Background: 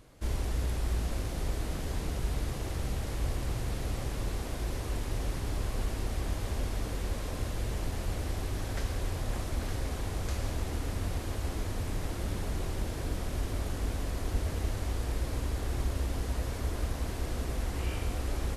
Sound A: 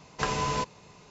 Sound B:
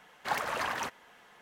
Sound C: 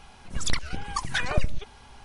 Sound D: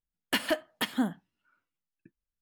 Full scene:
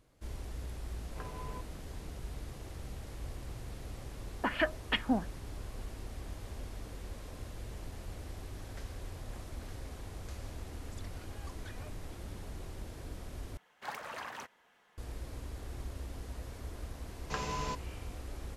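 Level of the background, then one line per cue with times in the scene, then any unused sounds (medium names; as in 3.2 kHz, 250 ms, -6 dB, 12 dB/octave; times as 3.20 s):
background -10.5 dB
0.97 s: add A -16.5 dB + Bessel low-pass 1.6 kHz
4.11 s: add D -3.5 dB + LFO low-pass sine 2.7 Hz 680–2700 Hz
10.51 s: add C -16.5 dB + compression, threshold -31 dBFS
13.57 s: replace with B -10 dB
17.11 s: add A -8.5 dB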